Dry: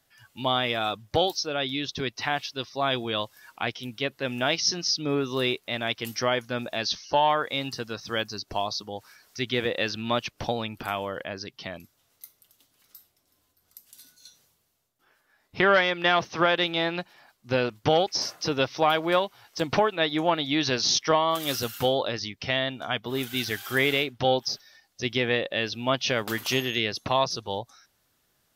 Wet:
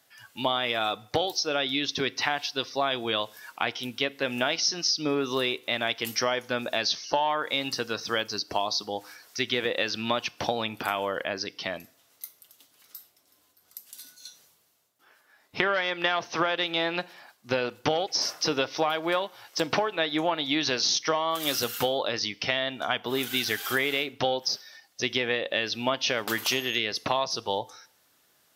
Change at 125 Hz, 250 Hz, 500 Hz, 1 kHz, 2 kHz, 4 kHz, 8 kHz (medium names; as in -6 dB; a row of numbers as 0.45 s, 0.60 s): -6.5 dB, -2.5 dB, -2.0 dB, -2.0 dB, -0.5 dB, +0.5 dB, +1.0 dB